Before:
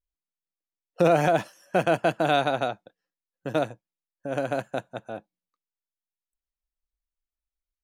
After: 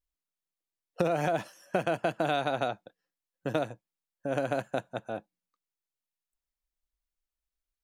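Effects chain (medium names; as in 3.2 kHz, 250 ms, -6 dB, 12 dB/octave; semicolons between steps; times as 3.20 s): compression, threshold -24 dBFS, peak gain reduction 9 dB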